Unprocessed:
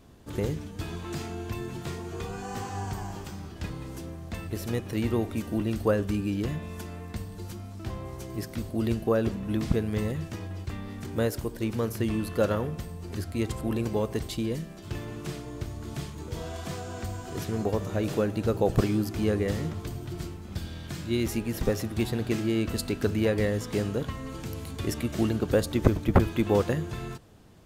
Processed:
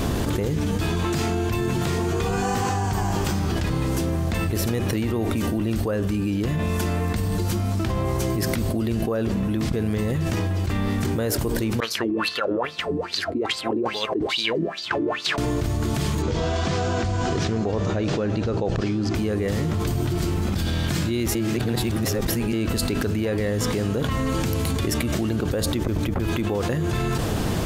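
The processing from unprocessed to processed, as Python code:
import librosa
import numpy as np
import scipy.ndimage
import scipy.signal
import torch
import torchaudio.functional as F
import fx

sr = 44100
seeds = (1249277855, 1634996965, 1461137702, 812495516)

y = fx.filter_lfo_bandpass(x, sr, shape='sine', hz=2.4, low_hz=300.0, high_hz=4600.0, q=7.0, at=(11.8, 15.38))
y = fx.lowpass(y, sr, hz=6400.0, slope=24, at=(16.22, 19.15))
y = fx.edit(y, sr, fx.reverse_span(start_s=21.35, length_s=1.18), tone=tone)
y = fx.env_flatten(y, sr, amount_pct=100)
y = y * librosa.db_to_amplitude(-9.0)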